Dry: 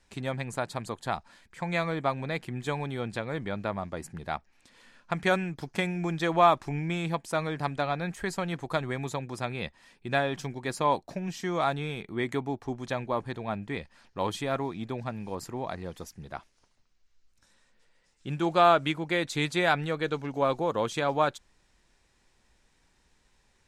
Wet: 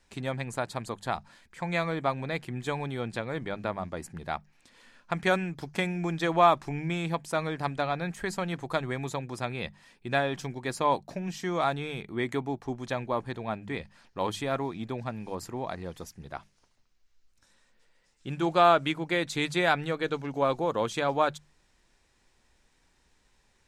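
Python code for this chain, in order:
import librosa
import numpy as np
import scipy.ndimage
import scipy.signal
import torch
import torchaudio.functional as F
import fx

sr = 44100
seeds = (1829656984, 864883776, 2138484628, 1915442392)

y = fx.hum_notches(x, sr, base_hz=50, count=4)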